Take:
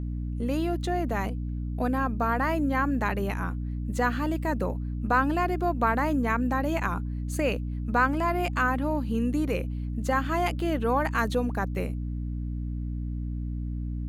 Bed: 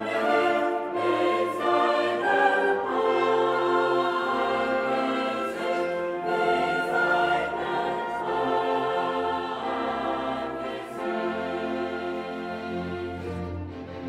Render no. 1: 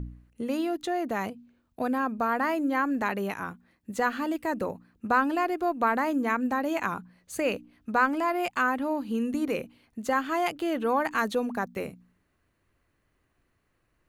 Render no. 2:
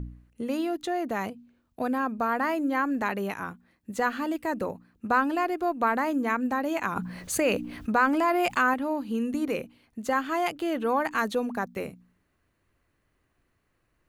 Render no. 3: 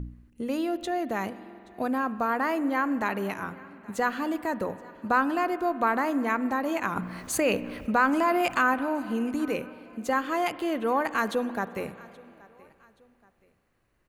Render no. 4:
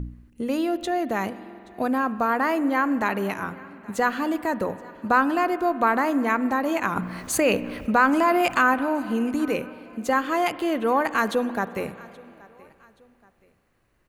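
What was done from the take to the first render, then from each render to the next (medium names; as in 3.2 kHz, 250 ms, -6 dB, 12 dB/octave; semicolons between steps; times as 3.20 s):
de-hum 60 Hz, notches 5
6.96–8.74 s: level flattener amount 50%
feedback delay 826 ms, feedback 37%, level -23.5 dB; spring tank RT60 2.9 s, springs 46 ms, chirp 60 ms, DRR 14.5 dB
trim +4 dB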